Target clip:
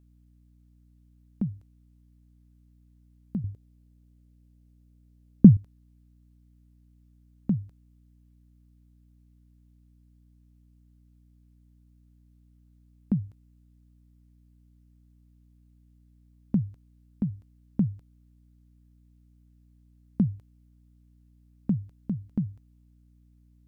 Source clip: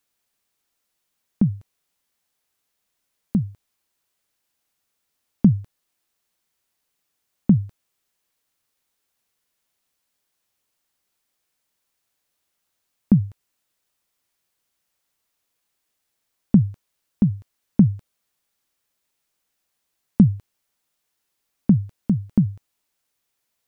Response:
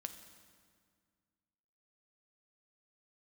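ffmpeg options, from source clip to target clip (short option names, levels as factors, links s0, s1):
-filter_complex "[0:a]asettb=1/sr,asplit=3[s0][s1][s2];[s0]atrim=end=3.444[s3];[s1]atrim=start=3.44:end=5.57,asetpts=PTS-STARTPTS,afade=t=in:d=0.004:c=qsin,afade=t=out:st=2.126:d=0.004:c=qsin,lowshelf=f=640:t=q:w=1.5:g=12[s4];[s2]atrim=start=5.566[s5];[s3][s4]acrossfade=d=0.004:c1=hsin:c2=qsin[s6];[s6][s5]acrossfade=d=0.004:c1=qsin:c2=hsin,aeval=exprs='val(0)+0.00447*(sin(2*PI*60*n/s)+sin(2*PI*2*60*n/s)/2+sin(2*PI*3*60*n/s)/3+sin(2*PI*4*60*n/s)/4+sin(2*PI*5*60*n/s)/5)':c=same,volume=0.299"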